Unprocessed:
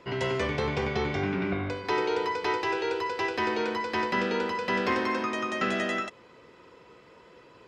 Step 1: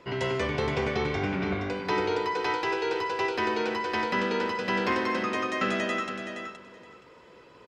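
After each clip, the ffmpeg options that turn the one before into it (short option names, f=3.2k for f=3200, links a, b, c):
-af "aecho=1:1:471|942|1413:0.398|0.0677|0.0115"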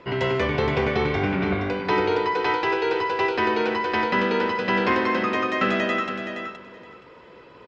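-af "lowpass=4k,volume=5.5dB"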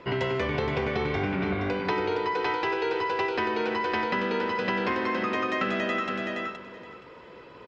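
-af "acompressor=threshold=-24dB:ratio=6"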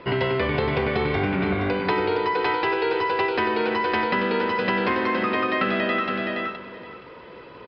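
-af "aresample=11025,aresample=44100,volume=4.5dB"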